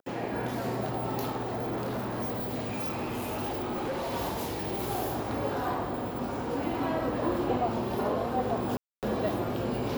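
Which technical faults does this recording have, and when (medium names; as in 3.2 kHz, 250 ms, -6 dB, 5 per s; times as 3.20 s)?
1.38–4.14 s: clipped -29 dBFS
8.77–9.03 s: dropout 258 ms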